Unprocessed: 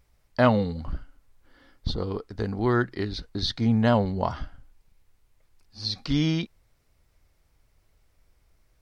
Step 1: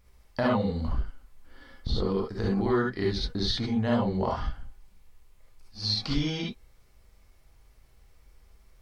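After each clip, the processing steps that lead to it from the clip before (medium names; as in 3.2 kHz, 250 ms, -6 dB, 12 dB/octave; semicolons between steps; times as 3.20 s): compression 3:1, threshold -29 dBFS, peak gain reduction 11.5 dB; gated-style reverb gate 90 ms rising, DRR -3.5 dB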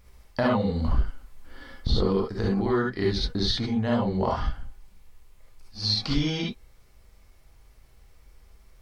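gain riding within 5 dB 0.5 s; trim +3 dB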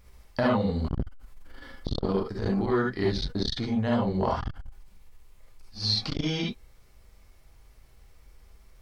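transformer saturation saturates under 300 Hz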